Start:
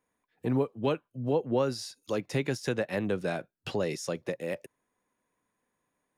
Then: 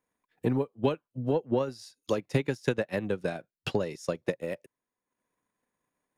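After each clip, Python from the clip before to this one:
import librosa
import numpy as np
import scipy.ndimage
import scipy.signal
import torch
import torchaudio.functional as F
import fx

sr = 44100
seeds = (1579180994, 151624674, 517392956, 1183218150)

y = fx.transient(x, sr, attack_db=9, sustain_db=-7)
y = F.gain(torch.from_numpy(y), -3.5).numpy()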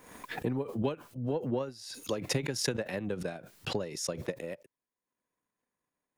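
y = fx.pre_swell(x, sr, db_per_s=63.0)
y = F.gain(torch.from_numpy(y), -5.5).numpy()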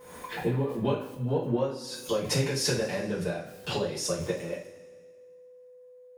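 y = fx.rev_double_slope(x, sr, seeds[0], early_s=0.35, late_s=1.8, knee_db=-17, drr_db=-9.0)
y = y + 10.0 ** (-44.0 / 20.0) * np.sin(2.0 * np.pi * 500.0 * np.arange(len(y)) / sr)
y = F.gain(torch.from_numpy(y), -5.0).numpy()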